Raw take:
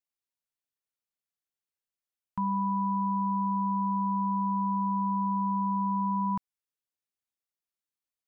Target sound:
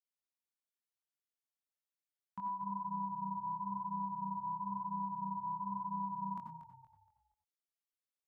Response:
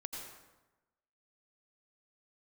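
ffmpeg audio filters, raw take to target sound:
-filter_complex "[0:a]highpass=f=290:p=1[a];[1:a]atrim=start_sample=2205,afade=t=out:st=0.15:d=0.01,atrim=end_sample=7056[b];[a][b]afir=irnorm=-1:irlink=0,flanger=delay=16:depth=7.3:speed=1,asplit=5[c][d][e][f][g];[d]adelay=235,afreqshift=-32,volume=-10.5dB[h];[e]adelay=470,afreqshift=-64,volume=-20.1dB[i];[f]adelay=705,afreqshift=-96,volume=-29.8dB[j];[g]adelay=940,afreqshift=-128,volume=-39.4dB[k];[c][h][i][j][k]amix=inputs=5:normalize=0,volume=-1dB"

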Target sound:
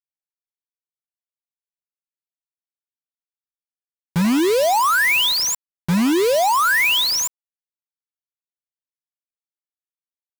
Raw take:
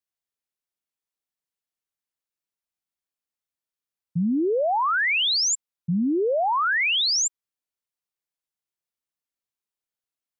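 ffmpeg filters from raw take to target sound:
-af "aeval=exprs='val(0)+0.00708*sin(2*PI*990*n/s)':c=same,lowpass=5.3k,acrusher=bits=4:mix=0:aa=0.000001,volume=5dB"

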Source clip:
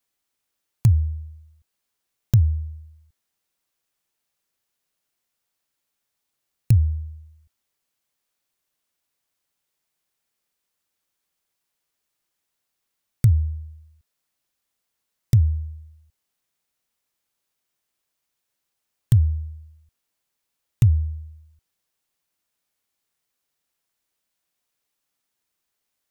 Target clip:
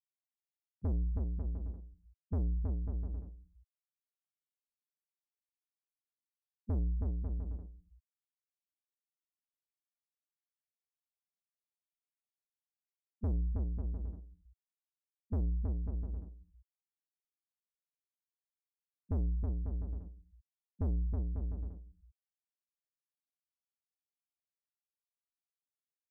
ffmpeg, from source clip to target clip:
-filter_complex "[0:a]afftfilt=real='re*gte(hypot(re,im),0.224)':imag='im*gte(hypot(re,im),0.224)':win_size=1024:overlap=0.75,equalizer=f=310:w=1.4:g=3,acrossover=split=150[a][b];[b]acompressor=threshold=-37dB:ratio=16[c];[a][c]amix=inputs=2:normalize=0,asoftclip=type=tanh:threshold=-27dB,asetrate=33038,aresample=44100,atempo=1.33484,asplit=2[d][e];[e]aecho=0:1:320|544|700.8|810.6|887.4:0.631|0.398|0.251|0.158|0.1[f];[d][f]amix=inputs=2:normalize=0,volume=-3dB"

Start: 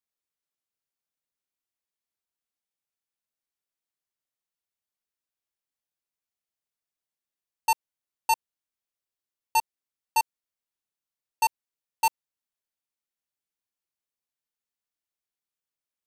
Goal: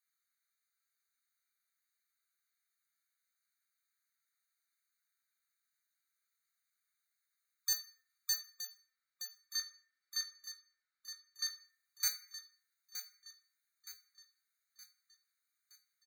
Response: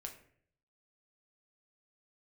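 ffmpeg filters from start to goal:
-filter_complex "[0:a]asplit=3[a][b][c];[a]afade=t=out:st=8.32:d=0.02[d];[b]lowpass=3.5k,afade=t=in:st=8.32:d=0.02,afade=t=out:st=11.46:d=0.02[e];[c]afade=t=in:st=11.46:d=0.02[f];[d][e][f]amix=inputs=3:normalize=0,asoftclip=type=tanh:threshold=-23.5dB,aecho=1:1:919|1838|2757|3676|4595:0.282|0.132|0.0623|0.0293|0.0138[g];[1:a]atrim=start_sample=2205[h];[g][h]afir=irnorm=-1:irlink=0,afftfilt=real='re*eq(mod(floor(b*sr/1024/1200),2),1)':imag='im*eq(mod(floor(b*sr/1024/1200),2),1)':win_size=1024:overlap=0.75,volume=12dB"

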